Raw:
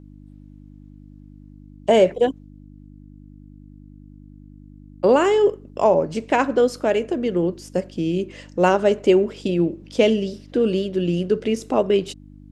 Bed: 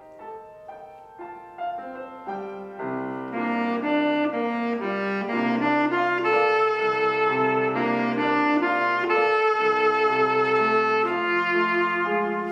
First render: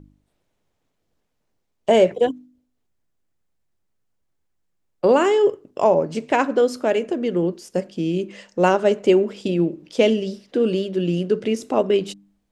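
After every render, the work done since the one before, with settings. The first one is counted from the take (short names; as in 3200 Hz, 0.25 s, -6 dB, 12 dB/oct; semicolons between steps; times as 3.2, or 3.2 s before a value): de-hum 50 Hz, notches 6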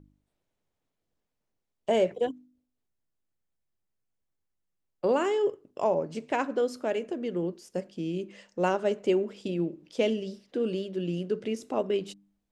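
gain -9.5 dB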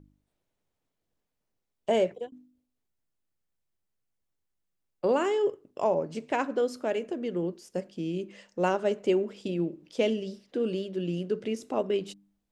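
1.91–2.32 fade out equal-power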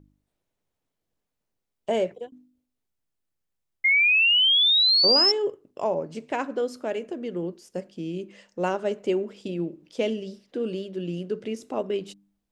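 3.84–5.32 painted sound rise 2100–5400 Hz -19 dBFS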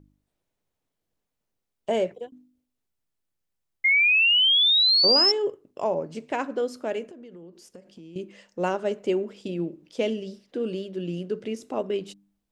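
7.06–8.16 compressor 12:1, threshold -41 dBFS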